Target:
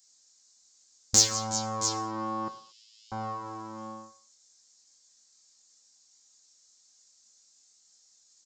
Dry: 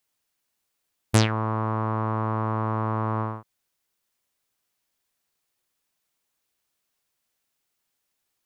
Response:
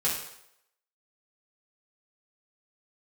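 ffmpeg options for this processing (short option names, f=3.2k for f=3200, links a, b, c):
-filter_complex "[0:a]aecho=1:1:3.8:0.69,asplit=2[a][b];[b]adynamicsmooth=sensitivity=7.5:basefreq=6k,volume=-0.5dB[c];[a][c]amix=inputs=2:normalize=0,aecho=1:1:170|367|670:0.112|0.119|0.188,flanger=delay=19.5:depth=2.2:speed=0.64,acompressor=threshold=-32dB:ratio=2.5,asettb=1/sr,asplit=3[d][e][f];[d]atrim=end=2.484[g];[e]atrim=start=2.48:end=3.12,asetpts=PTS-STARTPTS,afade=t=in:d=0.004:c=qsin,afade=t=out:st=0.636:d=0.004:c=qsin,asuperpass=centerf=5800:order=12:qfactor=0.75[h];[f]atrim=start=3.116[i];[g][h]acrossfade=d=0.004:c1=hsin:c2=qsin[j];[j][i]acrossfade=d=0.004:c1=qsin:c2=hsin,aresample=16000,aresample=44100,aexciter=amount=7.5:drive=8.3:freq=4.3k,aemphasis=mode=production:type=50kf,asplit=2[k][l];[1:a]atrim=start_sample=2205,afade=t=out:st=0.29:d=0.01,atrim=end_sample=13230[m];[l][m]afir=irnorm=-1:irlink=0,volume=-16dB[n];[k][n]amix=inputs=2:normalize=0,volume=-5dB"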